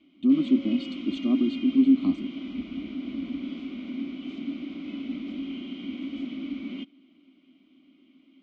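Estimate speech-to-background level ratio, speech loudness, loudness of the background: 10.5 dB, −24.5 LKFS, −35.0 LKFS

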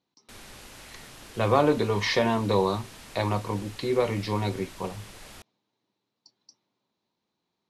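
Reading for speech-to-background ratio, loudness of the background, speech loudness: 19.0 dB, −45.5 LKFS, −26.5 LKFS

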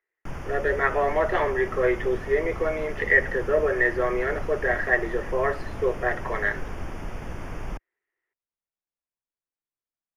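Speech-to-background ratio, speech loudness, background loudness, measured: 12.5 dB, −25.0 LKFS, −37.5 LKFS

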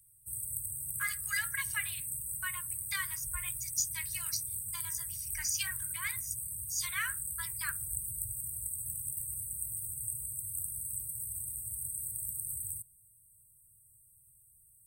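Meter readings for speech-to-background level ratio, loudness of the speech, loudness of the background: −2.0 dB, −38.0 LKFS, −36.0 LKFS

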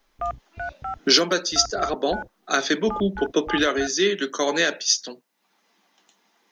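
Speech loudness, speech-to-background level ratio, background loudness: −22.0 LKFS, 12.5 dB, −34.5 LKFS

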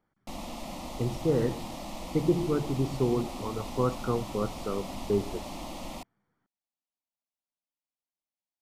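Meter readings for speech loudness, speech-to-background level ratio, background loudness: −30.5 LKFS, 9.5 dB, −40.0 LKFS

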